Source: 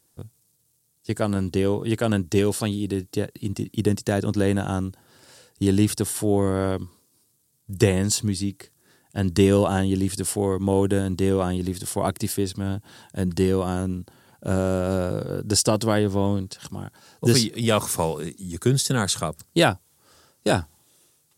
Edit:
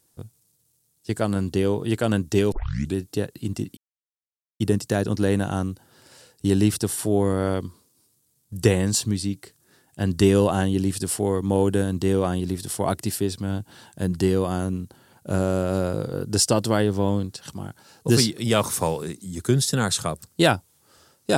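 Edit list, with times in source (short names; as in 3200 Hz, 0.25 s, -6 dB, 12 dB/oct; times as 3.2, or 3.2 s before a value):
2.52 tape start 0.43 s
3.77 insert silence 0.83 s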